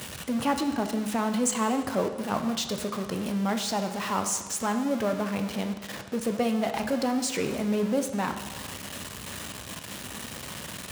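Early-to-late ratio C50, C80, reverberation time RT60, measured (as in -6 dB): 8.5 dB, 10.5 dB, 1.3 s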